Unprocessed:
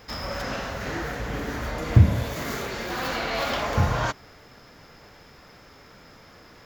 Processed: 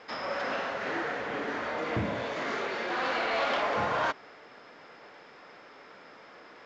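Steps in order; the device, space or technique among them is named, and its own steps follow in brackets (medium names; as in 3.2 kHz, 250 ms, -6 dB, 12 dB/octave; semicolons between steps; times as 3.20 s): telephone (band-pass 340–3200 Hz; saturation -21.5 dBFS, distortion -19 dB; trim +1 dB; µ-law 128 kbps 16 kHz)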